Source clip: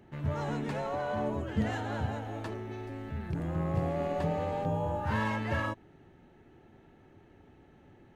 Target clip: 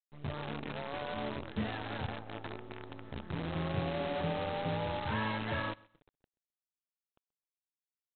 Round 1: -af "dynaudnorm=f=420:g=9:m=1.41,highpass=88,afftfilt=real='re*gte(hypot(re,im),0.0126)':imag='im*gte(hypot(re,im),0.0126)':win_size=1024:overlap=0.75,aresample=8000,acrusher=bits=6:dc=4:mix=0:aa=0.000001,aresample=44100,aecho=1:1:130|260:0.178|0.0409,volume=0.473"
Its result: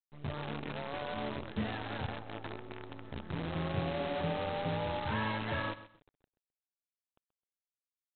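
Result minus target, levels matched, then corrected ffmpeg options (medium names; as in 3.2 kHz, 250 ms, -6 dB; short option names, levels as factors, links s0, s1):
echo-to-direct +9 dB
-af "dynaudnorm=f=420:g=9:m=1.41,highpass=88,afftfilt=real='re*gte(hypot(re,im),0.0126)':imag='im*gte(hypot(re,im),0.0126)':win_size=1024:overlap=0.75,aresample=8000,acrusher=bits=6:dc=4:mix=0:aa=0.000001,aresample=44100,aecho=1:1:130|260:0.0631|0.0145,volume=0.473"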